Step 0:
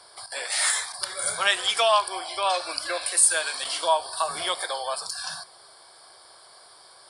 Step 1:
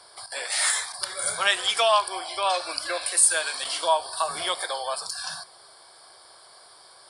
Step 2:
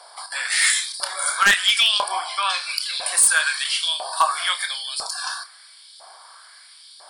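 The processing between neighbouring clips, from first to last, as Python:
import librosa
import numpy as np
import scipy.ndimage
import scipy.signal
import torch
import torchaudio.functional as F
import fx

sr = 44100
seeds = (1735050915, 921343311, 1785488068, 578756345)

y1 = x
y2 = fx.filter_lfo_highpass(y1, sr, shape='saw_up', hz=1.0, low_hz=650.0, high_hz=3800.0, q=2.3)
y2 = fx.chorus_voices(y2, sr, voices=4, hz=1.1, base_ms=29, depth_ms=4.1, mix_pct=25)
y2 = 10.0 ** (-13.0 / 20.0) * (np.abs((y2 / 10.0 ** (-13.0 / 20.0) + 3.0) % 4.0 - 2.0) - 1.0)
y2 = y2 * 10.0 ** (5.5 / 20.0)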